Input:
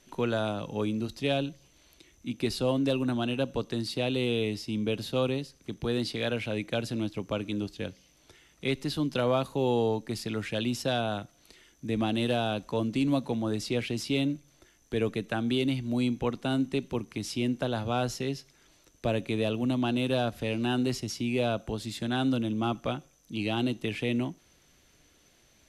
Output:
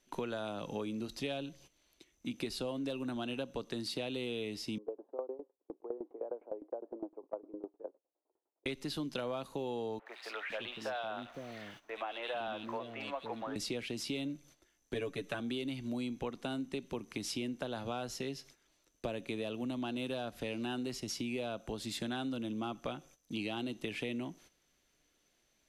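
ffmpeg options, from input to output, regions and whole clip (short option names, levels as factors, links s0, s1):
-filter_complex "[0:a]asettb=1/sr,asplit=3[s0][s1][s2];[s0]atrim=end=4.784[s3];[s1]atrim=start=4.78:end=8.66,asetpts=PTS-STARTPTS,afade=t=in:d=0.004:c=qsin,afade=t=out:st=3.876:d=0.004:c=qsin,asuperpass=centerf=570:order=8:qfactor=0.86,aeval=exprs='val(0)*pow(10,-19*if(lt(mod(9.8*n/s,1),2*abs(9.8)/1000),1-mod(9.8*n/s,1)/(2*abs(9.8)/1000),(mod(9.8*n/s,1)-2*abs(9.8)/1000)/(1-2*abs(9.8)/1000))/20)':c=same[s4];[s2]atrim=start=8.656[s5];[s3][s4]acrossfade=d=0.004:c1=hsin:c2=qsin[s6];[s6][s5]acrossfade=d=0.004:c1=qsin:c2=hsin,asettb=1/sr,asplit=3[s7][s8][s9];[s7]atrim=end=9.994[s10];[s8]atrim=start=9.99:end=13.56,asetpts=PTS-STARTPTS,afade=t=in:d=0.004:c=qsin,afade=t=out:st=3.566:d=0.004:c=qsin,aeval=exprs='val(0)+0.5*0.00708*sgn(val(0))':c=same,acrossover=split=540 3200:gain=0.178 1 0.0794[s11][s12][s13];[s11][s12][s13]amix=inputs=3:normalize=0,acrossover=split=390|2600[s14][s15][s16];[s16]adelay=70[s17];[s14]adelay=510[s18];[s18][s15][s17]amix=inputs=3:normalize=0,atrim=end_sample=157437[s19];[s9]atrim=start=13.556[s20];[s10][s19]acrossfade=d=0.004:c1=hsin:c2=qsin[s21];[s21][s20]acrossfade=d=0.004:c1=qsin:c2=hsin,asettb=1/sr,asplit=3[s22][s23][s24];[s22]atrim=end=14.944[s25];[s23]atrim=start=14.94:end=15.4,asetpts=PTS-STARTPTS,afade=t=in:d=0.004:c=qsin,afade=t=out:st=0.456:d=0.004:c=qsin,bandreject=f=490:w=7.9,aecho=1:1:7.1:0.86,atrim=end_sample=20286[s26];[s24]atrim=start=15.396[s27];[s25][s26]acrossfade=d=0.004:c1=hsin:c2=qsin[s28];[s28][s27]acrossfade=d=0.004:c1=qsin:c2=hsin,agate=range=0.224:threshold=0.00224:ratio=16:detection=peak,equalizer=f=91:t=o:w=1.6:g=-8.5,acompressor=threshold=0.0141:ratio=6,volume=1.19"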